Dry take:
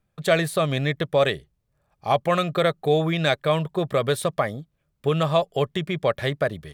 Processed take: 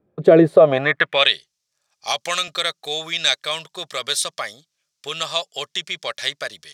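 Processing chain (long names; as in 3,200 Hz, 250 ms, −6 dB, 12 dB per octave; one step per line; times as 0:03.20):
band-pass filter sweep 370 Hz → 5,700 Hz, 0:00.47–0:01.45
boost into a limiter +20 dB
0:02.07–0:02.48: multiband upward and downward compressor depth 100%
level −1 dB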